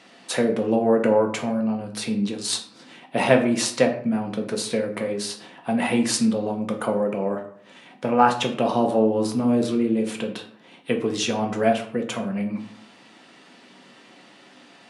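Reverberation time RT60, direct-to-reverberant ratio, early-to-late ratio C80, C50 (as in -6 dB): 0.60 s, 2.5 dB, 13.0 dB, 10.0 dB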